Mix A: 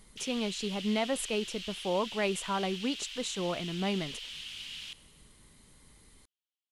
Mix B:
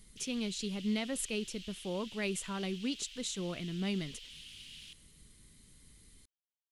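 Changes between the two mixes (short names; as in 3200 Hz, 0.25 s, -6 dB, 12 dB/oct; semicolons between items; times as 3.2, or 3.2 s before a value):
background -6.5 dB; master: add bell 830 Hz -13 dB 1.8 oct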